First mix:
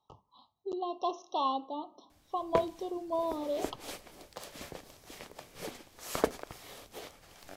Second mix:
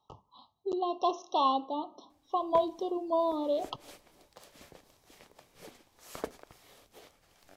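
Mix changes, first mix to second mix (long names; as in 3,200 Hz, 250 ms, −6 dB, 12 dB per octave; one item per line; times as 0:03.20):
speech +4.0 dB
background −9.0 dB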